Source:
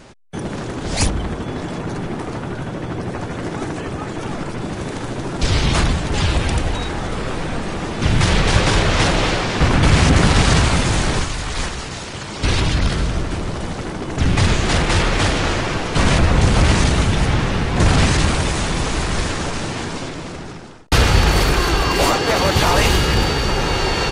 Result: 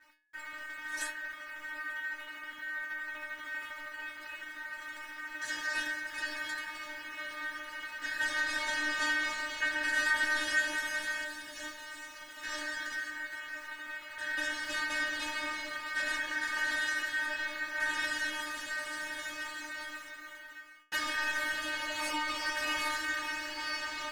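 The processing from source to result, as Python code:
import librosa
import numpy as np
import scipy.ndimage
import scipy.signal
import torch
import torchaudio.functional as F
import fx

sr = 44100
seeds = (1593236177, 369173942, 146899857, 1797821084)

y = fx.delta_hold(x, sr, step_db=-37.0)
y = y * np.sin(2.0 * np.pi * 1700.0 * np.arange(len(y)) / sr)
y = fx.stiff_resonator(y, sr, f0_hz=300.0, decay_s=0.38, stiffness=0.002)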